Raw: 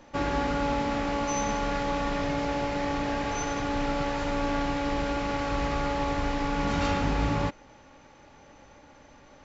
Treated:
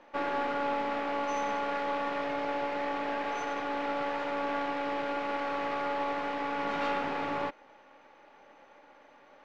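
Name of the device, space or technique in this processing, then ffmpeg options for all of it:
crystal radio: -af "highpass=400,lowpass=2900,aeval=exprs='if(lt(val(0),0),0.708*val(0),val(0))':channel_layout=same"

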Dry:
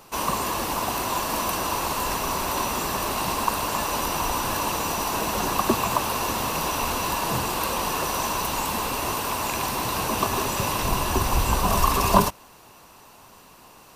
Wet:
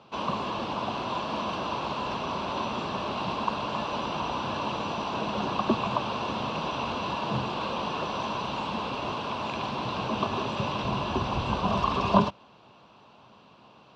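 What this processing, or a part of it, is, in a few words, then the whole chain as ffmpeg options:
guitar cabinet: -af "highpass=87,equalizer=frequency=130:width_type=q:width=4:gain=5,equalizer=frequency=210:width_type=q:width=4:gain=6,equalizer=frequency=600:width_type=q:width=4:gain=3,equalizer=frequency=1900:width_type=q:width=4:gain=-9,equalizer=frequency=3300:width_type=q:width=4:gain=4,lowpass=frequency=4000:width=0.5412,lowpass=frequency=4000:width=1.3066,volume=-4.5dB"

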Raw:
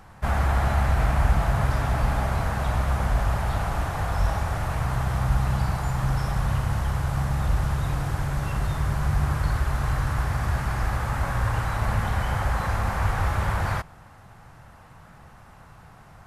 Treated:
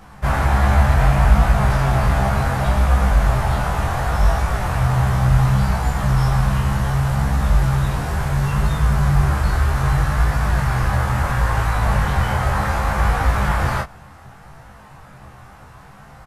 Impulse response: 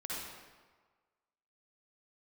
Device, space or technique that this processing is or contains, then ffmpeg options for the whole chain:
double-tracked vocal: -filter_complex "[0:a]asplit=2[link_01][link_02];[link_02]adelay=15,volume=-2dB[link_03];[link_01][link_03]amix=inputs=2:normalize=0,flanger=delay=19:depth=6.3:speed=0.68,volume=7.5dB"

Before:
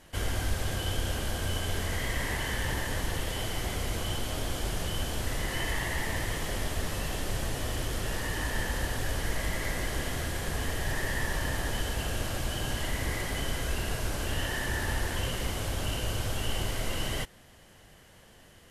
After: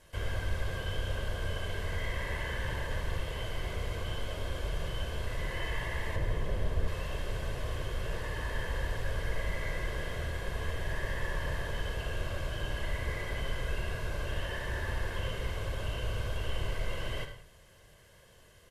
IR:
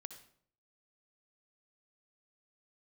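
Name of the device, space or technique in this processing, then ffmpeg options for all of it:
microphone above a desk: -filter_complex "[0:a]acrossover=split=3700[link_01][link_02];[link_02]acompressor=threshold=-52dB:ratio=4:attack=1:release=60[link_03];[link_01][link_03]amix=inputs=2:normalize=0,aecho=1:1:1.9:0.52[link_04];[1:a]atrim=start_sample=2205[link_05];[link_04][link_05]afir=irnorm=-1:irlink=0,asettb=1/sr,asplit=3[link_06][link_07][link_08];[link_06]atrim=end=6.164[link_09];[link_07]atrim=start=6.16:end=6.88,asetpts=PTS-STARTPTS,afade=type=in:duration=0.004:curve=qsin,afade=type=out:start_time=0.716:duration=0.004:curve=qsin,tiltshelf=frequency=800:gain=5[link_10];[link_08]atrim=start=6.876[link_11];[link_09][link_10]acrossfade=duration=0.004:curve1=hsin:curve2=qsin[link_12];[link_12][link_11]acrossfade=duration=0.004:curve1=qsin:curve2=hsin"

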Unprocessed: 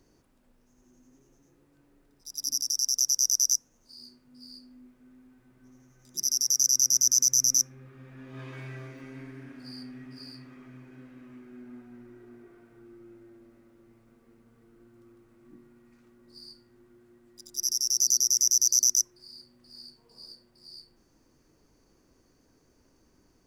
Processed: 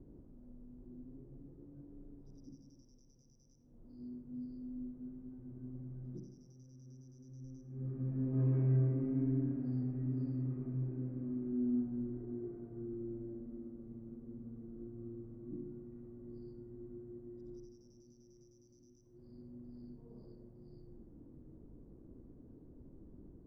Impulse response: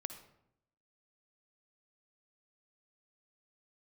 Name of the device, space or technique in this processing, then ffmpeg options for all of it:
television next door: -filter_complex "[0:a]acompressor=threshold=-32dB:ratio=5,lowpass=330[link_01];[1:a]atrim=start_sample=2205[link_02];[link_01][link_02]afir=irnorm=-1:irlink=0,volume=13dB"

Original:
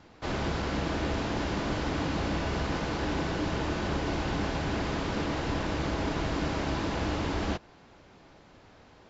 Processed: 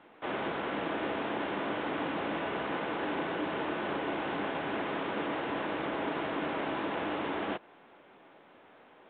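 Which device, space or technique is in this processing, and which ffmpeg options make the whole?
telephone: -af "highpass=300,lowpass=3400" -ar 8000 -c:a pcm_mulaw

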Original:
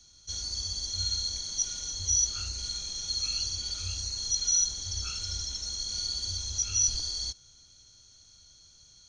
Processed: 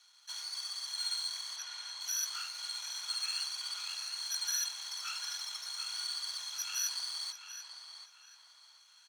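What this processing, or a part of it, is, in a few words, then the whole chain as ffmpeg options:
crystal radio: -filter_complex "[0:a]highpass=240,lowpass=2800,aeval=exprs='if(lt(val(0),0),0.251*val(0),val(0))':channel_layout=same,highpass=frequency=910:width=0.5412,highpass=frequency=910:width=1.3066,asettb=1/sr,asplit=3[link_01][link_02][link_03];[link_01]atrim=end=1.564[link_04];[link_02]atrim=start=1.56:end=2.01,asetpts=PTS-STARTPTS,afade=type=in:duration=0.004:curve=qsin,afade=type=out:start_time=0.446:duration=0.004:curve=qsin,aemphasis=mode=reproduction:type=50fm[link_05];[link_03]atrim=start=2.006[link_06];[link_04][link_05]acrossfade=duration=0.004:curve1=hsin:curve2=qsin[link_07];[link_07][link_06]acrossfade=duration=0.004:curve1=qsin:curve2=hsin,asplit=2[link_08][link_09];[link_09]adelay=737,lowpass=frequency=3500:poles=1,volume=-7dB,asplit=2[link_10][link_11];[link_11]adelay=737,lowpass=frequency=3500:poles=1,volume=0.37,asplit=2[link_12][link_13];[link_13]adelay=737,lowpass=frequency=3500:poles=1,volume=0.37,asplit=2[link_14][link_15];[link_15]adelay=737,lowpass=frequency=3500:poles=1,volume=0.37[link_16];[link_08][link_10][link_12][link_14][link_16]amix=inputs=5:normalize=0,volume=7.5dB"

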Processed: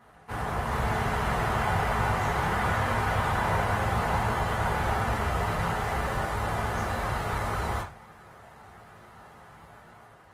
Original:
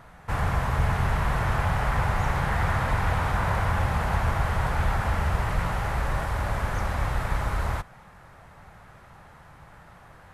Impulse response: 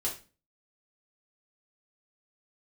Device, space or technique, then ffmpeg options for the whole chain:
far-field microphone of a smart speaker: -filter_complex "[1:a]atrim=start_sample=2205[link_01];[0:a][link_01]afir=irnorm=-1:irlink=0,highpass=110,dynaudnorm=framelen=230:gausssize=5:maxgain=3.5dB,volume=-6.5dB" -ar 48000 -c:a libopus -b:a 20k

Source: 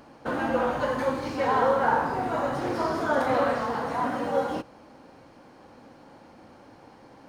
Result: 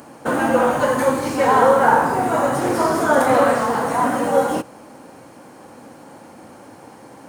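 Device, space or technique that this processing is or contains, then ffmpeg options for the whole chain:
budget condenser microphone: -af "highpass=100,highshelf=frequency=6300:width_type=q:width=1.5:gain=10,volume=9dB"

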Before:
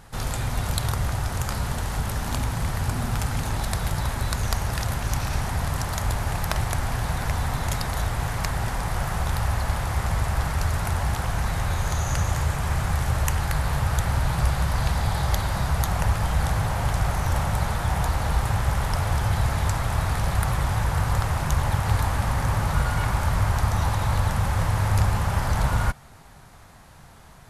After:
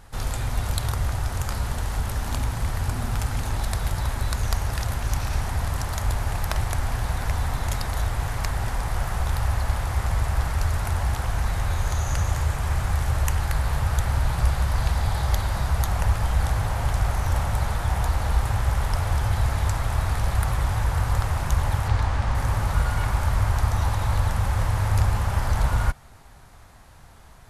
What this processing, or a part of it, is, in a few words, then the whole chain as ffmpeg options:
low shelf boost with a cut just above: -filter_complex "[0:a]asettb=1/sr,asplit=3[link_01][link_02][link_03];[link_01]atrim=end=21.884[link_04];[link_02]atrim=start=21.88:end=22.35,asetpts=PTS-STARTPTS,afade=type=in:duration=0.004:curve=qsin,afade=type=out:start_time=0.466:duration=0.004:curve=qsin,lowpass=6100[link_05];[link_03]atrim=start=22.346[link_06];[link_04][link_05]acrossfade=duration=0.004:curve1=hsin:curve2=qsin[link_07];[link_07][link_06]acrossfade=duration=0.004:curve1=qsin:curve2=hsin,lowshelf=frequency=110:gain=5.5,equalizer=frequency=160:width_type=o:width=0.81:gain=-5.5,volume=-2dB"

